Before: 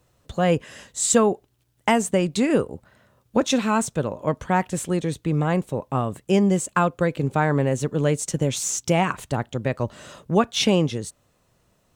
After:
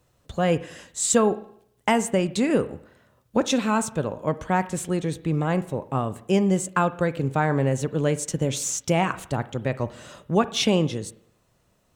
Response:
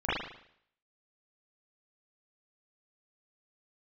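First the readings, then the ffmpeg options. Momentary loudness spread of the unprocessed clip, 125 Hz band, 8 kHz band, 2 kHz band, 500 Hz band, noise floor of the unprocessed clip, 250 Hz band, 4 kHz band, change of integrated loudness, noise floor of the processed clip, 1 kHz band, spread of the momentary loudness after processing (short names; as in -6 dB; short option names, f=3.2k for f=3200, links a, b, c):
8 LU, -1.5 dB, -1.5 dB, -1.5 dB, -1.5 dB, -66 dBFS, -1.5 dB, -1.5 dB, -1.5 dB, -66 dBFS, -1.5 dB, 8 LU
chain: -filter_complex "[0:a]asplit=2[a][b];[1:a]atrim=start_sample=2205[c];[b][c]afir=irnorm=-1:irlink=0,volume=-25.5dB[d];[a][d]amix=inputs=2:normalize=0,volume=-2dB"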